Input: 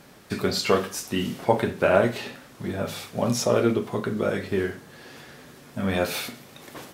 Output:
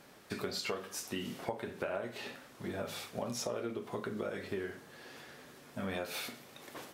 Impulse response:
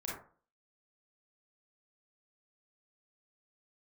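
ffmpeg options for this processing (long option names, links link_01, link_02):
-af "bass=frequency=250:gain=-6,treble=frequency=4000:gain=-1,acompressor=threshold=-28dB:ratio=8,volume=-6dB"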